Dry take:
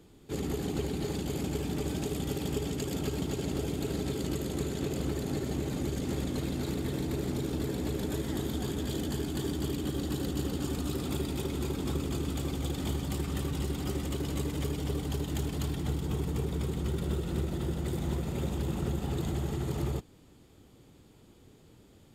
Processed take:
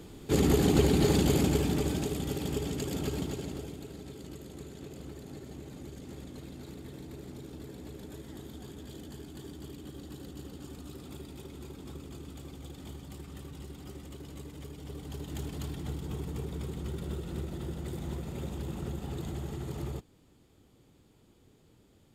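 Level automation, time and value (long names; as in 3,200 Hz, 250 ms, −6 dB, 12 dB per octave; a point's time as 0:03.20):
0:01.26 +9 dB
0:02.19 −0.5 dB
0:03.18 −0.5 dB
0:03.91 −12 dB
0:14.73 −12 dB
0:15.41 −5 dB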